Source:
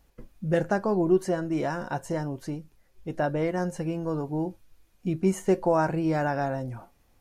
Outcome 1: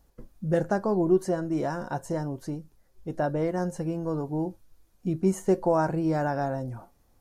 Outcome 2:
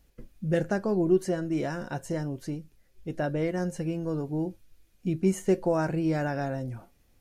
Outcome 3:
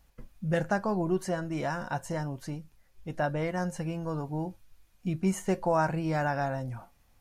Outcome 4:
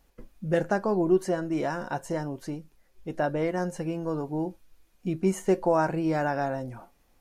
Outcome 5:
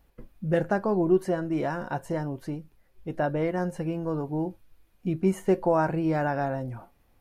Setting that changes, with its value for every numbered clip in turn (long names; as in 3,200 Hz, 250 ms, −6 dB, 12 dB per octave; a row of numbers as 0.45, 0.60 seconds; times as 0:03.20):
parametric band, centre frequency: 2,500, 950, 370, 91, 6,600 Hertz